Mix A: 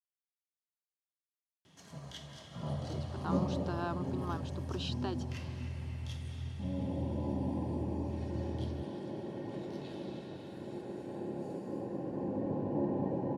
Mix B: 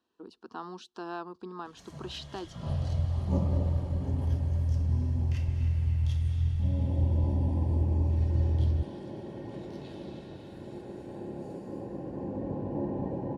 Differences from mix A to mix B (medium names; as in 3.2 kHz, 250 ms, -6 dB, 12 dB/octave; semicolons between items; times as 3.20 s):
speech: entry -2.70 s; second sound: add tilt EQ -2 dB/octave; master: remove high-pass 120 Hz 12 dB/octave